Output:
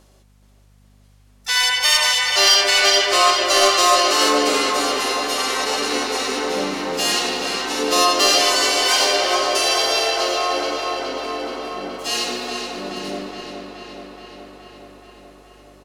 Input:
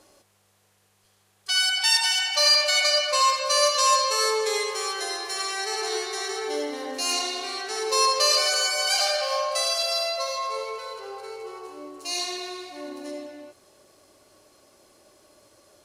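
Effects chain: waveshaping leveller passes 1; harmony voices -12 st -18 dB, -7 st -2 dB, +3 st -5 dB; hum 50 Hz, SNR 33 dB; tape echo 423 ms, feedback 76%, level -6 dB, low-pass 5.7 kHz; trim -1 dB

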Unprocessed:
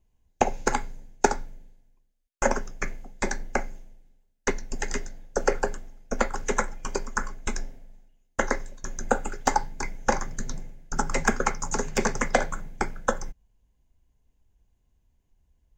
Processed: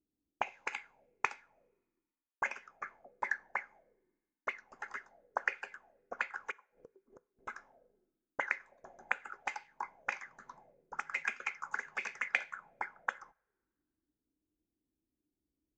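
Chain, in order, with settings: 6.51–7.39 s: inverted gate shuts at -23 dBFS, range -34 dB; auto-wah 300–2500 Hz, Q 7.3, up, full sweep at -21 dBFS; two-slope reverb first 0.38 s, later 1.9 s, from -27 dB, DRR 19.5 dB; trim +3.5 dB

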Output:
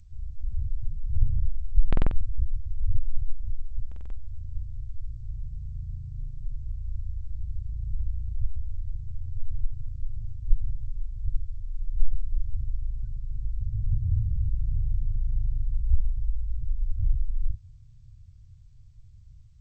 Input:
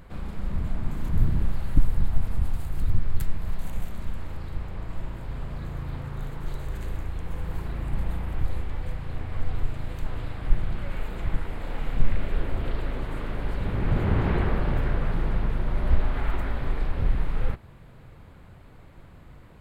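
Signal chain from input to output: spectral gate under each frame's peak -15 dB strong; elliptic band-stop 110–2300 Hz, stop band 60 dB; 12.92–13.52 s: dynamic bell 250 Hz, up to +5 dB, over -56 dBFS, Q 1.3; tape echo 642 ms, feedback 89%, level -20.5 dB, low-pass 1.5 kHz; buffer glitch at 1.88/3.87 s, samples 2048, times 4; G.722 64 kbps 16 kHz

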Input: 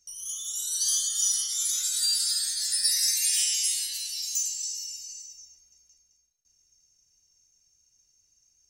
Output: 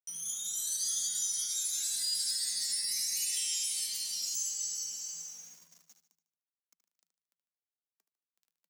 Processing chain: in parallel at +2 dB: compression 16:1, threshold -35 dBFS, peak gain reduction 16 dB; on the sum: peak limiter -16.5 dBFS, peak gain reduction 7 dB; word length cut 8-bit, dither none; flange 0.31 Hz, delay 0.3 ms, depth 3.9 ms, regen +79%; frequency shift +160 Hz; on a send: feedback delay 75 ms, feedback 44%, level -10.5 dB; on the sum: trim -3 dB

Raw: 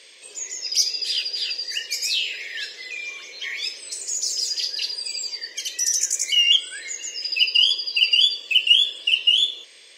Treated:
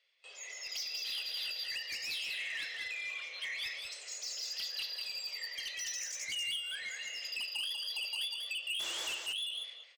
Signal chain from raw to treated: gate with hold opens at -34 dBFS; three-band isolator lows -24 dB, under 560 Hz, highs -21 dB, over 4.1 kHz; comb 1.5 ms, depth 37%; dynamic bell 2.3 kHz, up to -7 dB, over -30 dBFS, Q 1.1; compression 2:1, threshold -30 dBFS, peak gain reduction 7.5 dB; painted sound noise, 8.79–9.14 s, 300–8200 Hz -37 dBFS; saturation -31 dBFS, distortion -10 dB; delay 193 ms -4.5 dB; on a send at -23 dB: reverberation RT60 1.2 s, pre-delay 110 ms; on the sum: trim -3.5 dB

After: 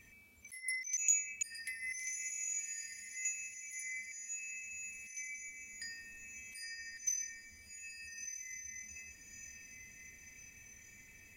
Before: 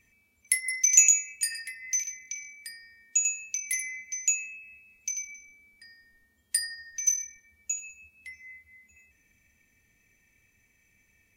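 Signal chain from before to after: slow attack 766 ms; echo that smears into a reverb 1356 ms, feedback 42%, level -5.5 dB; trim +5.5 dB

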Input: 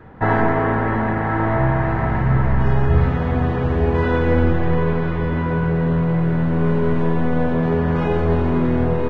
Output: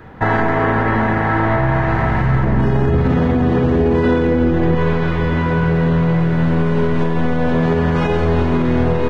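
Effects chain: 2.43–4.75 s: peaking EQ 280 Hz +11 dB 2.1 oct; peak limiter -11 dBFS, peak gain reduction 11.5 dB; treble shelf 3.2 kHz +12 dB; trim +3.5 dB

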